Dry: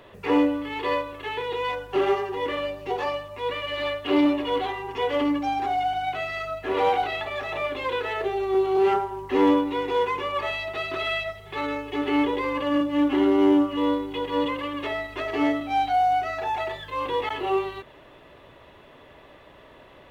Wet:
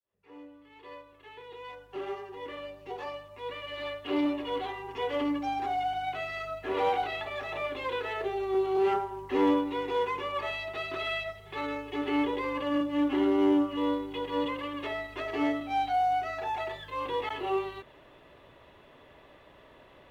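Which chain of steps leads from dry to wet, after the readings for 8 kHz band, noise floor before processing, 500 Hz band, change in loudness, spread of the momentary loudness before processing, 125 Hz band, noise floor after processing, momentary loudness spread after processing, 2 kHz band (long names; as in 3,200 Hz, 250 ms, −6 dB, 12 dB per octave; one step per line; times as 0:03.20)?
can't be measured, −50 dBFS, −6.5 dB, −6.0 dB, 9 LU, −6.5 dB, −56 dBFS, 14 LU, −6.5 dB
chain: fade in at the beginning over 5.66 s
level −5.5 dB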